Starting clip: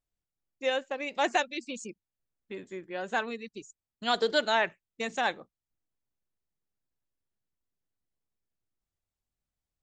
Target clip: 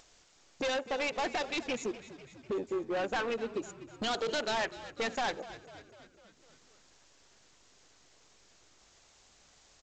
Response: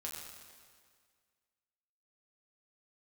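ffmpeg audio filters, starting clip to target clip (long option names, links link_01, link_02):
-filter_complex "[0:a]afwtdn=0.00794,bass=frequency=250:gain=-14,treble=frequency=4000:gain=5,asplit=2[link_01][link_02];[link_02]acompressor=mode=upward:threshold=-28dB:ratio=2.5,volume=2.5dB[link_03];[link_01][link_03]amix=inputs=2:normalize=0,alimiter=limit=-13dB:level=0:latency=1:release=133,asoftclip=type=hard:threshold=-30dB,asplit=7[link_04][link_05][link_06][link_07][link_08][link_09][link_10];[link_05]adelay=249,afreqshift=-49,volume=-15.5dB[link_11];[link_06]adelay=498,afreqshift=-98,volume=-19.9dB[link_12];[link_07]adelay=747,afreqshift=-147,volume=-24.4dB[link_13];[link_08]adelay=996,afreqshift=-196,volume=-28.8dB[link_14];[link_09]adelay=1245,afreqshift=-245,volume=-33.2dB[link_15];[link_10]adelay=1494,afreqshift=-294,volume=-37.7dB[link_16];[link_04][link_11][link_12][link_13][link_14][link_15][link_16]amix=inputs=7:normalize=0,asplit=2[link_17][link_18];[1:a]atrim=start_sample=2205,asetrate=79380,aresample=44100,lowpass=2300[link_19];[link_18][link_19]afir=irnorm=-1:irlink=0,volume=-13dB[link_20];[link_17][link_20]amix=inputs=2:normalize=0" -ar 16000 -c:a g722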